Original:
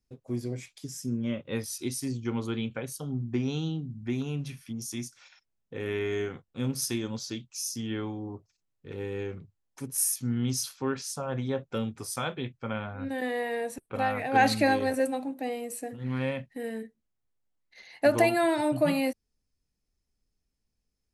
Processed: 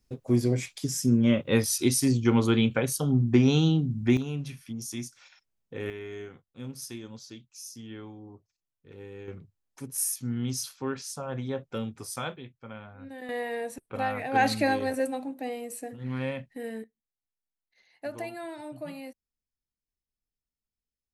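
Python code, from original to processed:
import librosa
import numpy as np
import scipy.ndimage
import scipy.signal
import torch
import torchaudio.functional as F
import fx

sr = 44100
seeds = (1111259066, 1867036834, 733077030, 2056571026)

y = fx.gain(x, sr, db=fx.steps((0.0, 9.0), (4.17, 0.0), (5.9, -9.0), (9.28, -2.0), (12.36, -9.5), (13.29, -1.5), (16.84, -14.0)))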